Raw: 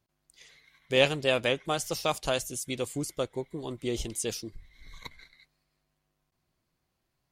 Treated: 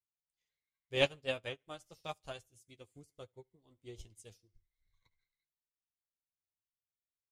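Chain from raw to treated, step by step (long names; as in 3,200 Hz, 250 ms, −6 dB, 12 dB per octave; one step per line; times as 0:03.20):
flanger 1.2 Hz, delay 9.6 ms, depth 2.1 ms, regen +35%
low shelf with overshoot 160 Hz +6.5 dB, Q 1.5
on a send: repeating echo 72 ms, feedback 41%, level −19.5 dB
on the sum: expander for the loud parts 2.5 to 1, over −43 dBFS
level −1 dB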